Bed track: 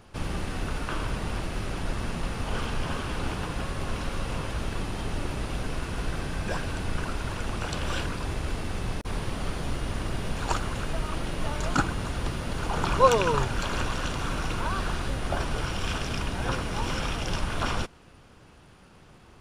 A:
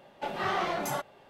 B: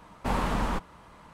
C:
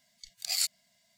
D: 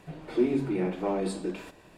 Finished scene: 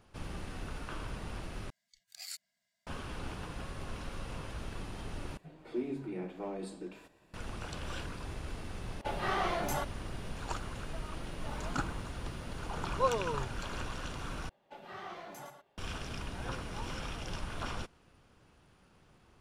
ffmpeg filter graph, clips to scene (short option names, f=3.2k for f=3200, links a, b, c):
-filter_complex "[1:a]asplit=2[a][b];[0:a]volume=-10.5dB[c];[3:a]equalizer=f=1.6k:t=o:w=0.64:g=8.5[d];[2:a]acrusher=bits=9:mix=0:aa=0.000001[e];[b]aecho=1:1:111:0.398[f];[c]asplit=4[g][h][i][j];[g]atrim=end=1.704[k];[d]atrim=end=1.17,asetpts=PTS-STARTPTS,volume=-15.5dB[l];[h]atrim=start=2.866:end=5.374[m];[4:a]atrim=end=1.97,asetpts=PTS-STARTPTS,volume=-11dB[n];[i]atrim=start=7.336:end=14.494[o];[f]atrim=end=1.29,asetpts=PTS-STARTPTS,volume=-16dB[p];[j]atrim=start=15.776[q];[a]atrim=end=1.29,asetpts=PTS-STARTPTS,volume=-3dB,afade=t=in:d=0.004:c=hsin,afade=t=out:st=1.286:d=0.004:c=hsin,adelay=8830[r];[e]atrim=end=1.33,asetpts=PTS-STARTPTS,volume=-17.5dB,afade=t=in:d=0.004:c=hsin,afade=t=out:st=1.326:d=0.004:c=hsin,adelay=11230[s];[k][l]acrossfade=d=0.004:c1=hsin:c2=hsin[t];[t][m]acrossfade=d=0.004:c1=hsin:c2=hsin[u];[u][n]acrossfade=d=0.004:c1=hsin:c2=hsin[v];[v][o]acrossfade=d=0.004:c1=hsin:c2=hsin[w];[w][p]acrossfade=d=0.004:c1=hsin:c2=hsin[x];[x][q]acrossfade=d=0.004:c1=hsin:c2=hsin[y];[y][r][s]amix=inputs=3:normalize=0"